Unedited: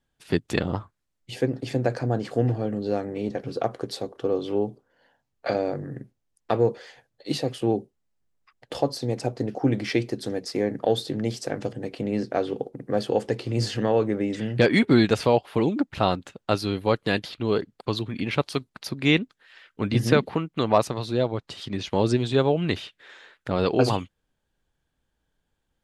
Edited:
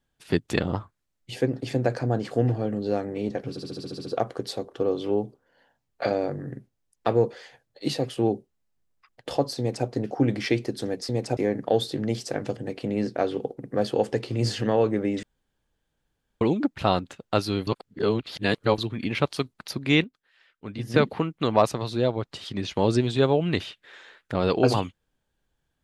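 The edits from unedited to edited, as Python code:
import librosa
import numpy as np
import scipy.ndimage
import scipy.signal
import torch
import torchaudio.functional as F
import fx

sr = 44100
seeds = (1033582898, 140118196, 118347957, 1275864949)

y = fx.edit(x, sr, fx.stutter(start_s=3.5, slice_s=0.07, count=9),
    fx.duplicate(start_s=9.03, length_s=0.28, to_s=10.53),
    fx.room_tone_fill(start_s=14.39, length_s=1.18),
    fx.reverse_span(start_s=16.83, length_s=1.11),
    fx.fade_down_up(start_s=18.95, length_s=1.4, db=-10.5, fade_s=0.25, curve='log'), tone=tone)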